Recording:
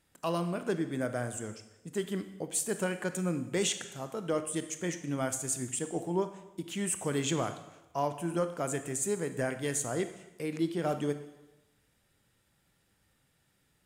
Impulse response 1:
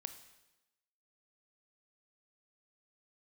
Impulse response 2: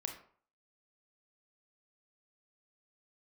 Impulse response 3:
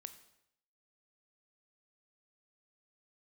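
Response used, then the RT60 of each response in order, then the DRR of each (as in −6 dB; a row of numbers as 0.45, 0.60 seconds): 1; 1.0, 0.50, 0.75 seconds; 9.0, 3.0, 9.5 decibels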